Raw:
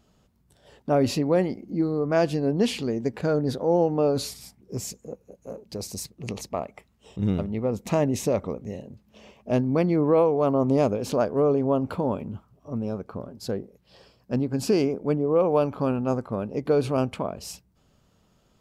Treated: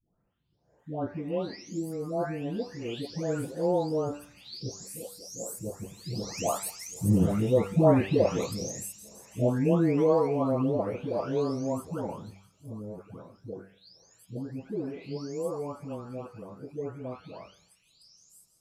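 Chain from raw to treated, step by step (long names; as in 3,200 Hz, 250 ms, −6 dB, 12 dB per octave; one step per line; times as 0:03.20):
every frequency bin delayed by itself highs late, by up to 815 ms
source passing by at 0:07.48, 9 m/s, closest 13 metres
hum removal 97.28 Hz, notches 38
on a send: delay with a high-pass on its return 166 ms, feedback 73%, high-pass 4,200 Hz, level −12.5 dB
on the sum: level +4.5 dB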